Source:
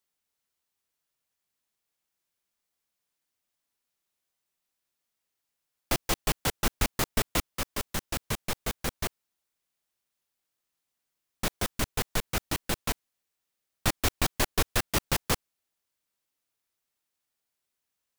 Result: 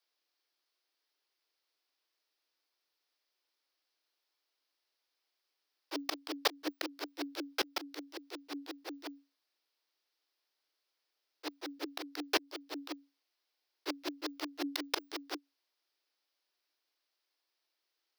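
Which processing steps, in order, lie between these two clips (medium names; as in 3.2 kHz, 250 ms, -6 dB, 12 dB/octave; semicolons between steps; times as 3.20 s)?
frequency shift +280 Hz; slow attack 169 ms; resonant high shelf 6.1 kHz -7 dB, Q 3; trim +1 dB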